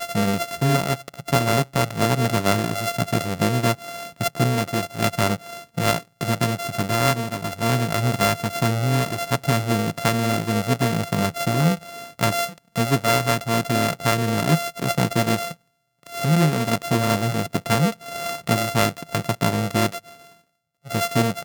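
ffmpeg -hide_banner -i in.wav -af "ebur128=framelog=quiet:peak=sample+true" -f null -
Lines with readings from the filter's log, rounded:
Integrated loudness:
  I:         -22.2 LUFS
  Threshold: -32.5 LUFS
Loudness range:
  LRA:         1.8 LU
  Threshold: -42.4 LUFS
  LRA low:   -23.5 LUFS
  LRA high:  -21.7 LUFS
Sample peak:
  Peak:       -2.8 dBFS
True peak:
  Peak:       -1.6 dBFS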